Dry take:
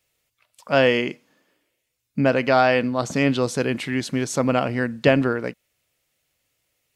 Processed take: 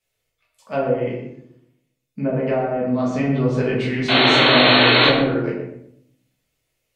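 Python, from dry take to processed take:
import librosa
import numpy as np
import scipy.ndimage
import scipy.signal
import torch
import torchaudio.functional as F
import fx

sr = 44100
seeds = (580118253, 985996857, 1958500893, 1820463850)

p1 = fx.env_lowpass_down(x, sr, base_hz=620.0, full_db=-13.0)
p2 = fx.rider(p1, sr, range_db=10, speed_s=0.5)
p3 = fx.spec_paint(p2, sr, seeds[0], shape='noise', start_s=4.08, length_s=1.01, low_hz=230.0, high_hz=4400.0, level_db=-14.0)
p4 = p3 + fx.echo_filtered(p3, sr, ms=122, feedback_pct=31, hz=1100.0, wet_db=-4, dry=0)
p5 = fx.room_shoebox(p4, sr, seeds[1], volume_m3=92.0, walls='mixed', distance_m=1.5)
y = p5 * 10.0 ** (-7.5 / 20.0)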